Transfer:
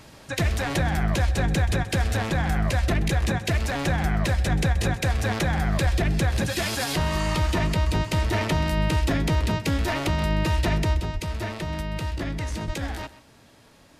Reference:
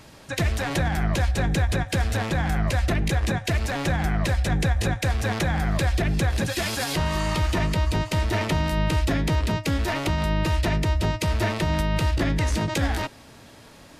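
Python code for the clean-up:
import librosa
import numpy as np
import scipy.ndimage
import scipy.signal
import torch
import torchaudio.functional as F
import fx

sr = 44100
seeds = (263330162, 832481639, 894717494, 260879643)

y = fx.fix_declip(x, sr, threshold_db=-14.5)
y = fx.highpass(y, sr, hz=140.0, slope=24, at=(5.83, 5.95), fade=0.02)
y = fx.highpass(y, sr, hz=140.0, slope=24, at=(11.13, 11.25), fade=0.02)
y = fx.highpass(y, sr, hz=140.0, slope=24, at=(12.66, 12.78), fade=0.02)
y = fx.fix_echo_inverse(y, sr, delay_ms=129, level_db=-16.5)
y = fx.fix_level(y, sr, at_s=11.0, step_db=6.5)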